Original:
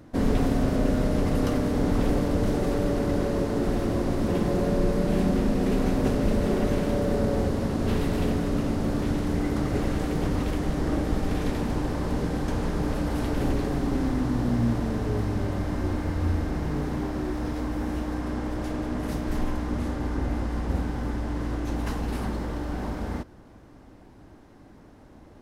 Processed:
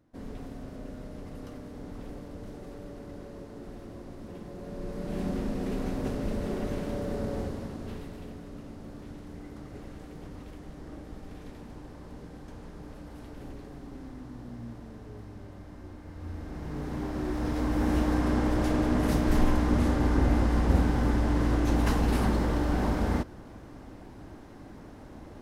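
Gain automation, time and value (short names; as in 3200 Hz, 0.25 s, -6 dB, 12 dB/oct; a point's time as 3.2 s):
4.55 s -18 dB
5.27 s -8 dB
7.4 s -8 dB
8.22 s -17.5 dB
16.01 s -17.5 dB
16.95 s -5 dB
17.97 s +4 dB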